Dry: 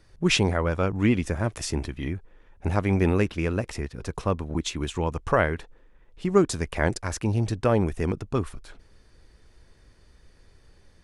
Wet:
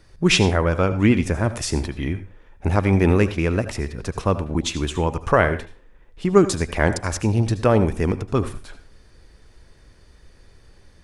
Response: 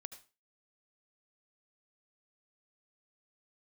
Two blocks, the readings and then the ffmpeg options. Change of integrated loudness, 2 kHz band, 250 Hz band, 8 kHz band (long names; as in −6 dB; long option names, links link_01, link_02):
+5.0 dB, +5.0 dB, +5.0 dB, +5.0 dB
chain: -filter_complex "[0:a]asplit=2[link_01][link_02];[1:a]atrim=start_sample=2205[link_03];[link_02][link_03]afir=irnorm=-1:irlink=0,volume=12dB[link_04];[link_01][link_04]amix=inputs=2:normalize=0,volume=-5dB"